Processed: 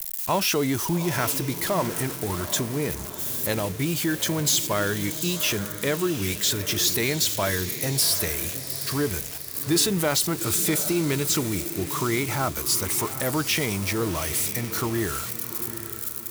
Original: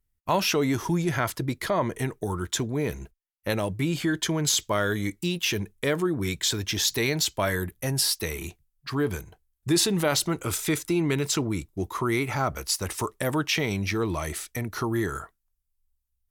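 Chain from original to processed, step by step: zero-crossing glitches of -22 dBFS; echo that smears into a reverb 776 ms, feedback 43%, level -11 dB

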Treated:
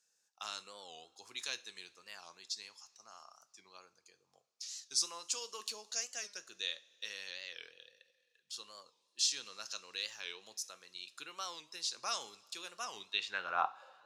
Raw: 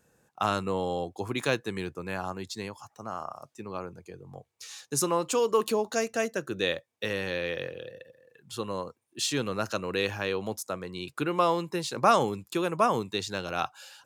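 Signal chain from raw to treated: band-pass sweep 5.3 kHz -> 490 Hz, 12.92–13.93 s; two-slope reverb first 0.33 s, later 3.1 s, from -21 dB, DRR 11.5 dB; warped record 45 rpm, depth 160 cents; trim +2 dB

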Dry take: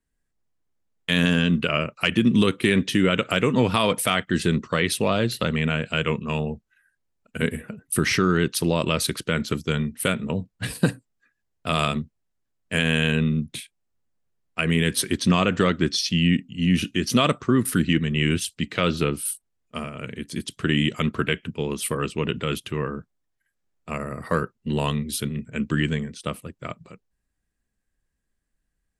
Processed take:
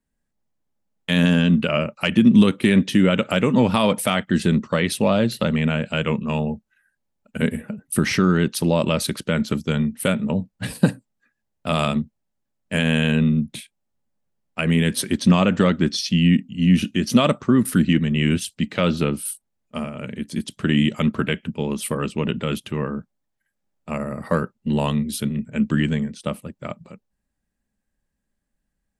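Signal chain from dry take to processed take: small resonant body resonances 210/580/820 Hz, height 8 dB, ringing for 30 ms; trim -1 dB

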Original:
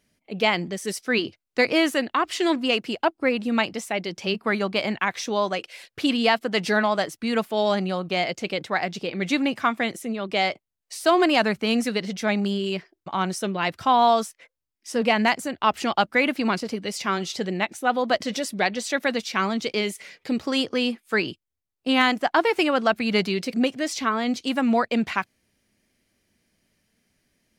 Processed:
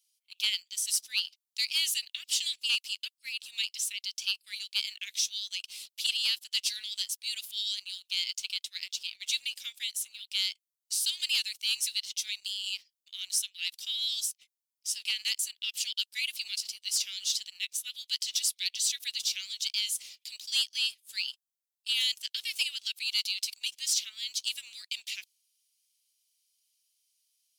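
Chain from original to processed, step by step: steep high-pass 2.9 kHz 36 dB/octave; treble shelf 4.9 kHz +9.5 dB; waveshaping leveller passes 1; trim -4 dB

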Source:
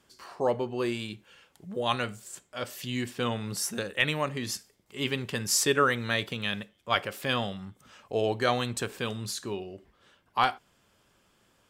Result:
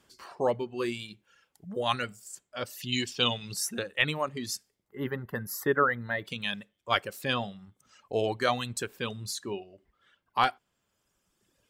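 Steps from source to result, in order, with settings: 4.88–6.25 s: time-frequency box 2.1–11 kHz -17 dB; reverb removal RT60 1.7 s; 2.92–3.54 s: high-order bell 4.2 kHz +13 dB

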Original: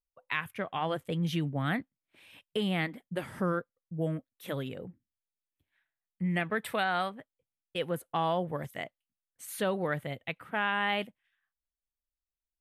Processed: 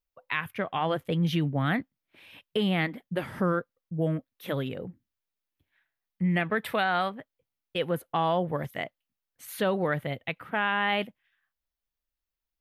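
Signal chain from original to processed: peaking EQ 8.2 kHz -9.5 dB 0.78 oct; in parallel at -2.5 dB: peak limiter -23.5 dBFS, peak gain reduction 7 dB

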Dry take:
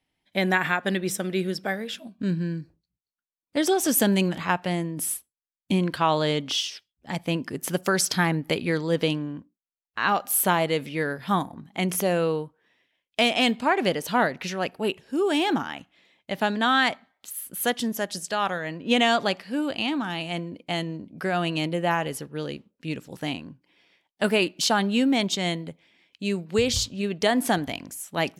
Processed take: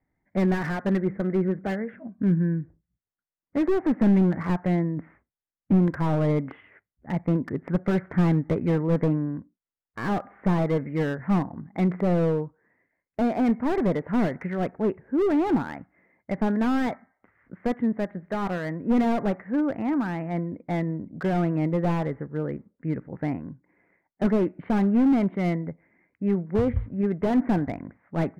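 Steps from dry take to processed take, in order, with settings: Chebyshev low-pass 2.1 kHz, order 6; bass shelf 250 Hz +8 dB; slew-rate limiter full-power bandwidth 41 Hz

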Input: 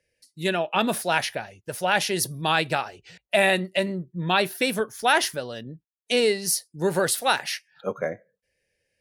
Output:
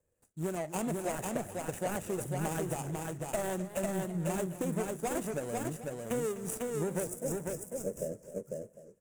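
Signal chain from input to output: median filter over 41 samples; resonant high shelf 6 kHz +10 dB, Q 3; compression, threshold -32 dBFS, peak gain reduction 12 dB; time-frequency box 7.03–8.28 s, 670–4900 Hz -17 dB; delay 498 ms -3 dB; modulated delay 256 ms, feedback 55%, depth 149 cents, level -14.5 dB

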